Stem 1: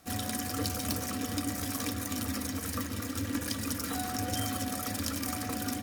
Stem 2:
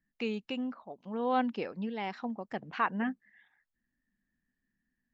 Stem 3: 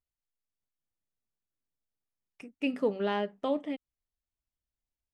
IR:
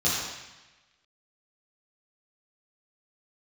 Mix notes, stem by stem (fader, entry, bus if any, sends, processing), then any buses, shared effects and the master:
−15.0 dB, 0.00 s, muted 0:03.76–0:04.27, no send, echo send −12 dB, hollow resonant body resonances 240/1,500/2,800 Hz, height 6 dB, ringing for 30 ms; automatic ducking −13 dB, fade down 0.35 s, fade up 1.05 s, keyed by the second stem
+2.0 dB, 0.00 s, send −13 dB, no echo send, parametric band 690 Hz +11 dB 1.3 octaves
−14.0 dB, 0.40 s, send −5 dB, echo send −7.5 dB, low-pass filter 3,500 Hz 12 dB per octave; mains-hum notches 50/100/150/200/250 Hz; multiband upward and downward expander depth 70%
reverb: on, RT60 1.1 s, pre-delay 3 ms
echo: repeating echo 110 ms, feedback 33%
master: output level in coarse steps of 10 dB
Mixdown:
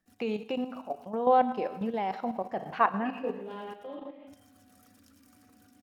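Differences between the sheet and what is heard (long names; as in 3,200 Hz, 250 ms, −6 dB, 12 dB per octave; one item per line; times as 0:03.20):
stem 1 −15.0 dB → −23.5 dB
stem 2: send −13 dB → −22 dB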